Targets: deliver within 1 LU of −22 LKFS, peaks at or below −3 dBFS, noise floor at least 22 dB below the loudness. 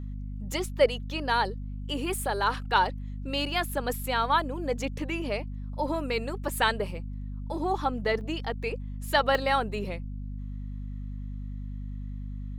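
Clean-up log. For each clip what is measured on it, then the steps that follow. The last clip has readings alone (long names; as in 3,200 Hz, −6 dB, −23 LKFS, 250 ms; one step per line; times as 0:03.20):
number of dropouts 3; longest dropout 1.9 ms; mains hum 50 Hz; hum harmonics up to 250 Hz; level of the hum −33 dBFS; integrated loudness −30.0 LKFS; sample peak −8.5 dBFS; target loudness −22.0 LKFS
→ repair the gap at 0:00.52/0:08.21/0:09.35, 1.9 ms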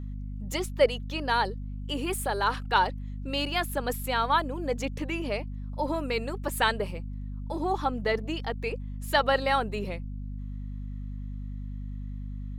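number of dropouts 0; mains hum 50 Hz; hum harmonics up to 250 Hz; level of the hum −33 dBFS
→ mains-hum notches 50/100/150/200/250 Hz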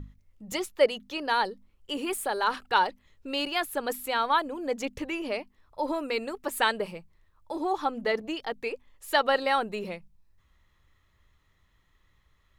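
mains hum none found; integrated loudness −29.0 LKFS; sample peak −8.5 dBFS; target loudness −22.0 LKFS
→ level +7 dB
brickwall limiter −3 dBFS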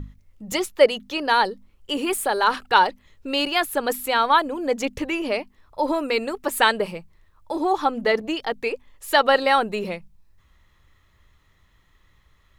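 integrated loudness −22.5 LKFS; sample peak −3.0 dBFS; background noise floor −61 dBFS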